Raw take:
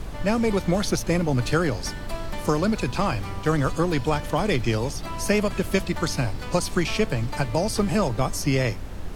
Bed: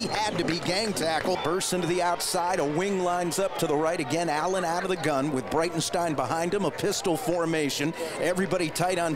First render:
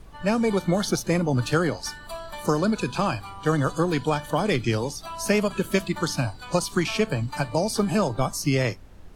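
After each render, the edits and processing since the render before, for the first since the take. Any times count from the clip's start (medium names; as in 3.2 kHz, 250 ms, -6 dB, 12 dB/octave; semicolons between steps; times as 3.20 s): noise print and reduce 13 dB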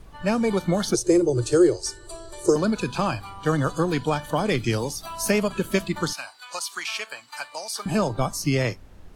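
0.94–2.56 s: FFT filter 120 Hz 0 dB, 240 Hz -22 dB, 350 Hz +14 dB, 770 Hz -9 dB, 3 kHz -8 dB, 8.5 kHz +10 dB, 14 kHz -14 dB; 4.57–5.31 s: treble shelf 9.1 kHz +10 dB; 6.13–7.86 s: high-pass 1.2 kHz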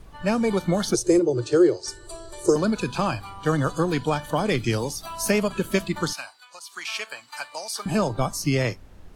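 1.19–1.88 s: band-pass 140–4900 Hz; 6.19–6.95 s: dip -12 dB, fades 0.33 s linear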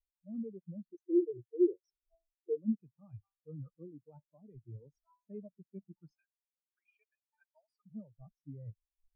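reverse; compression 5:1, threshold -29 dBFS, peak gain reduction 15 dB; reverse; spectral contrast expander 4:1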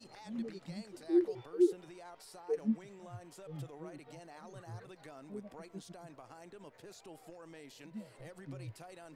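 add bed -26.5 dB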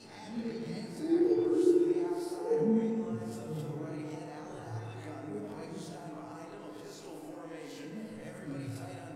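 reverse spectral sustain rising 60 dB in 0.49 s; FDN reverb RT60 2.4 s, low-frequency decay 1.05×, high-frequency decay 0.35×, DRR -2 dB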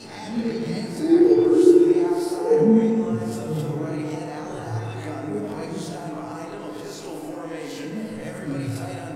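trim +12 dB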